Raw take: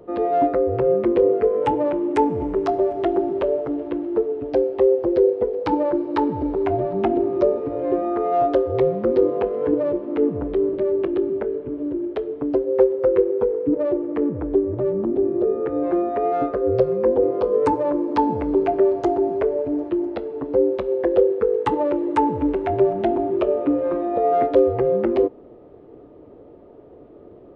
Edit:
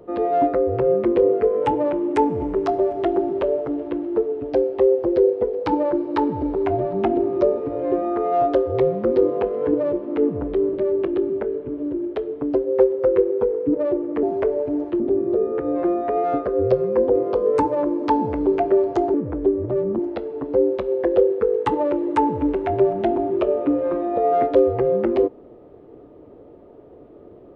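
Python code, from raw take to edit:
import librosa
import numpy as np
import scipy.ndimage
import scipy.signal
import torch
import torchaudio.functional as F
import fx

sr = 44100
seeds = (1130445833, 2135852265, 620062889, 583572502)

y = fx.edit(x, sr, fx.swap(start_s=14.23, length_s=0.85, other_s=19.22, other_length_s=0.77), tone=tone)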